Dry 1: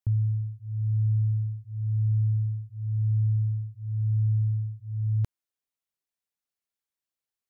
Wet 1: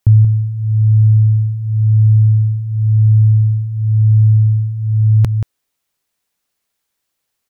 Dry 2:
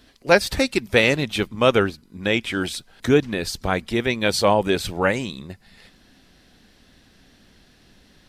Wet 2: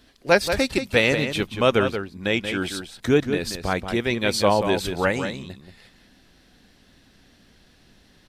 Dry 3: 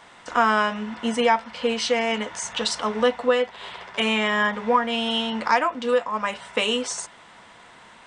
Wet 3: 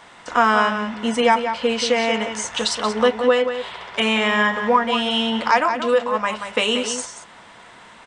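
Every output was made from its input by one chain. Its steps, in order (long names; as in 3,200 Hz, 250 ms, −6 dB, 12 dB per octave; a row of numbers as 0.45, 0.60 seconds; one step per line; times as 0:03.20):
slap from a distant wall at 31 metres, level −8 dB
normalise the peak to −3 dBFS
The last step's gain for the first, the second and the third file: +17.0, −2.0, +3.0 decibels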